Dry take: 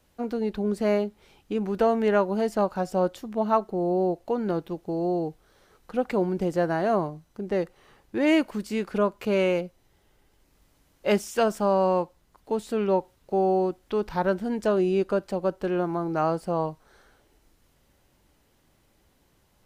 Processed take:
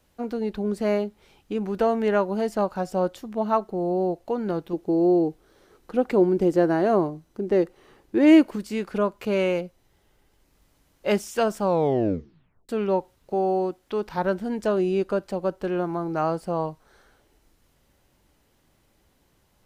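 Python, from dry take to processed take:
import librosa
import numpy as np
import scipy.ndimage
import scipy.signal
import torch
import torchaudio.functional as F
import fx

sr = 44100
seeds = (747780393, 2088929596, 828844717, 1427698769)

y = fx.peak_eq(x, sr, hz=340.0, db=8.5, octaves=0.91, at=(4.73, 8.56))
y = fx.low_shelf(y, sr, hz=110.0, db=-9.0, at=(13.34, 14.18))
y = fx.edit(y, sr, fx.tape_stop(start_s=11.62, length_s=1.07), tone=tone)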